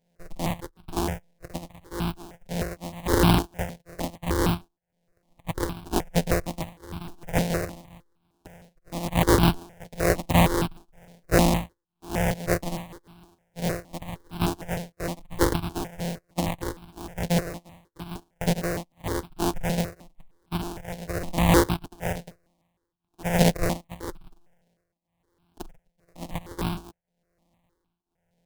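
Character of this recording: a buzz of ramps at a fixed pitch in blocks of 256 samples; tremolo triangle 0.99 Hz, depth 95%; aliases and images of a low sample rate 1300 Hz, jitter 20%; notches that jump at a steady rate 6.5 Hz 320–1900 Hz

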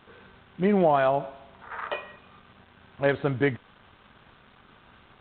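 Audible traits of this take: a quantiser's noise floor 8-bit, dither none; G.726

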